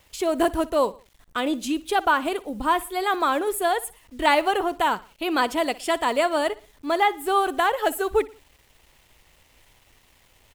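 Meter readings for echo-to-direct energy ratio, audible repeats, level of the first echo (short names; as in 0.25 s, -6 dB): -19.0 dB, 2, -20.0 dB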